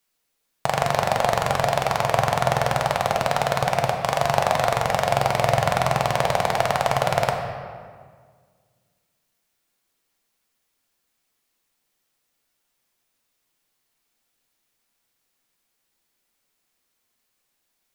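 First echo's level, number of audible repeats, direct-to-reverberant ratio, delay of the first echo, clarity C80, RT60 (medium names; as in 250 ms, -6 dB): no echo, no echo, 2.0 dB, no echo, 6.0 dB, 1.8 s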